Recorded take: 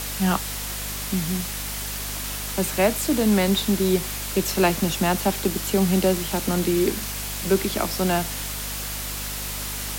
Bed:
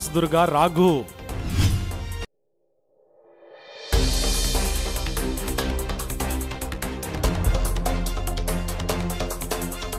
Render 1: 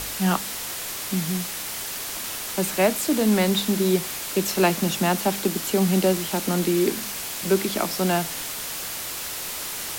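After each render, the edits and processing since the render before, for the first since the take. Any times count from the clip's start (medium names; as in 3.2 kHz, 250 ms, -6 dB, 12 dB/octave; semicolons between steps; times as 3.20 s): de-hum 50 Hz, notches 5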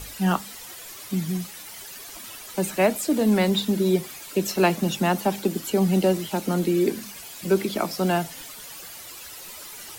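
noise reduction 12 dB, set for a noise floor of -32 dBFS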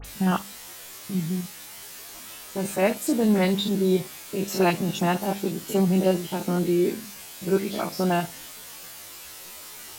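spectrogram pixelated in time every 50 ms; phase dispersion highs, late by 48 ms, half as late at 2.6 kHz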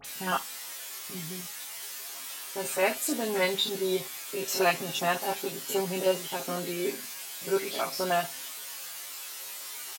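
high-pass 860 Hz 6 dB/octave; comb 7.4 ms, depth 70%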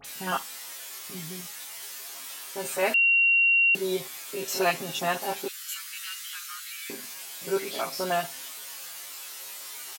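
2.94–3.75 s: bleep 2.75 kHz -17.5 dBFS; 5.48–6.90 s: steep high-pass 1.2 kHz 72 dB/octave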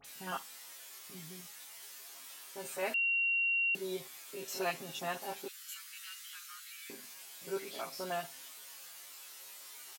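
trim -10.5 dB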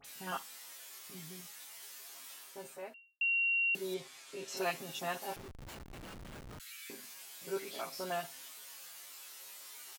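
2.31–3.21 s: studio fade out; 3.94–4.57 s: low-pass 7.6 kHz; 5.36–6.60 s: Schmitt trigger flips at -42 dBFS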